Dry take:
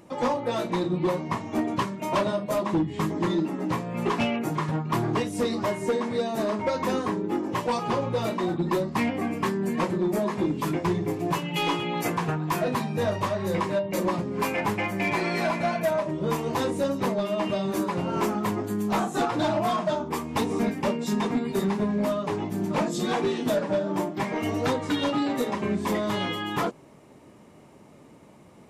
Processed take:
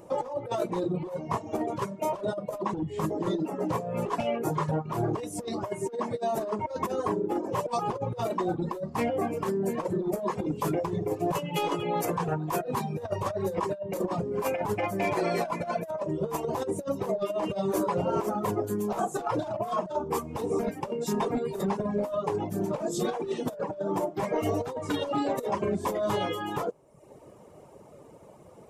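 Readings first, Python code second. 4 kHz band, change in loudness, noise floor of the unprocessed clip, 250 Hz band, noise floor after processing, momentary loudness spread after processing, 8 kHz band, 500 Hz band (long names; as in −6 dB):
−8.0 dB, −3.5 dB, −51 dBFS, −5.5 dB, −51 dBFS, 4 LU, −2.5 dB, −1.5 dB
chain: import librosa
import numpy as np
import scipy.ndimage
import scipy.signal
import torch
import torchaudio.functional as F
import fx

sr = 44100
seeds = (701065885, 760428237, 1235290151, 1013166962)

y = fx.dereverb_blind(x, sr, rt60_s=0.67)
y = fx.graphic_eq(y, sr, hz=(250, 500, 2000, 4000), db=(-8, 7, -7, -6))
y = fx.over_compress(y, sr, threshold_db=-28.0, ratio=-0.5)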